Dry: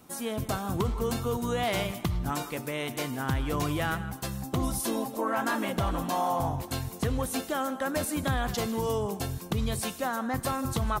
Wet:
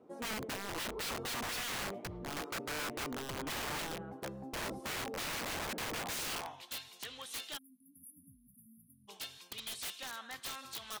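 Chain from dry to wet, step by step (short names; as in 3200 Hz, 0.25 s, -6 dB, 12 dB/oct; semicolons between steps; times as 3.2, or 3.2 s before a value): spectral delete 7.58–9.08, 300–9600 Hz; band-pass sweep 440 Hz -> 3400 Hz, 5.87–6.62; wrapped overs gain 37 dB; gain +3 dB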